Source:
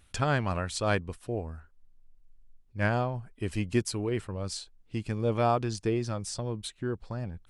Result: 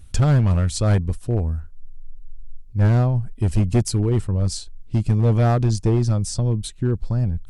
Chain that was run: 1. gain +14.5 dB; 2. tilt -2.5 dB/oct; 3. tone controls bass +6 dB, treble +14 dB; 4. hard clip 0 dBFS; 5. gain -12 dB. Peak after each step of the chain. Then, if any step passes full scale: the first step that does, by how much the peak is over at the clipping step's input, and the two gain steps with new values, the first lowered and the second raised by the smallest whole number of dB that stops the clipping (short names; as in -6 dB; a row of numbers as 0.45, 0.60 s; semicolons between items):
+1.5, +5.5, +9.0, 0.0, -12.0 dBFS; step 1, 9.0 dB; step 1 +5.5 dB, step 5 -3 dB